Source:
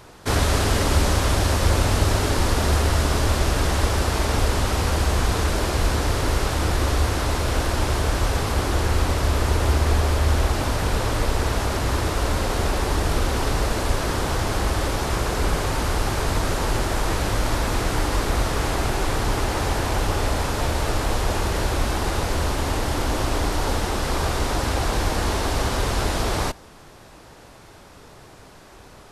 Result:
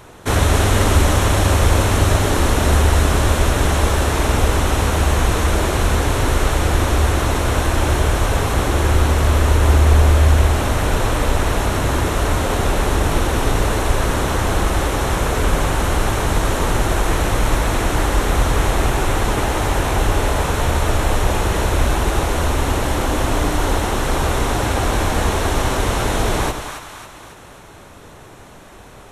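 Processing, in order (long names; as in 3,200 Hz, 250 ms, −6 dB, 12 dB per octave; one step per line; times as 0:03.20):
parametric band 4,800 Hz −11 dB 0.26 octaves
echo with a time of its own for lows and highs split 840 Hz, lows 93 ms, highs 274 ms, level −7 dB
level +4 dB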